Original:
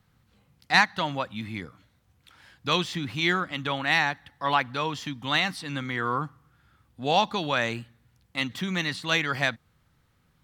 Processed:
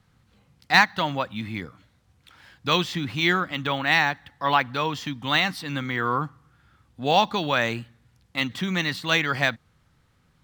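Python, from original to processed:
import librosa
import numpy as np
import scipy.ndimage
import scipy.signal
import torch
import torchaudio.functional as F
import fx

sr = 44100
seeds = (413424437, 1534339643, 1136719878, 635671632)

y = np.interp(np.arange(len(x)), np.arange(len(x))[::2], x[::2])
y = y * 10.0 ** (3.0 / 20.0)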